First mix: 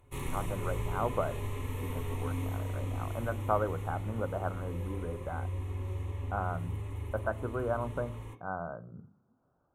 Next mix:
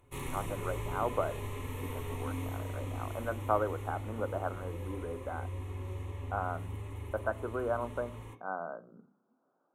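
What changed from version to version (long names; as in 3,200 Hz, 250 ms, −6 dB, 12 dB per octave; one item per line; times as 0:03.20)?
speech: add high-pass filter 230 Hz 24 dB per octave
background: add low-shelf EQ 130 Hz −5.5 dB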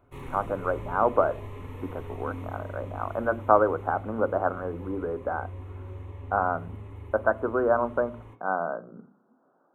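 speech +10.0 dB
background: add parametric band 9,800 Hz −15 dB 2.3 octaves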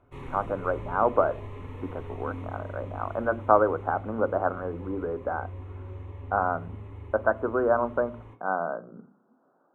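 master: add high-frequency loss of the air 60 metres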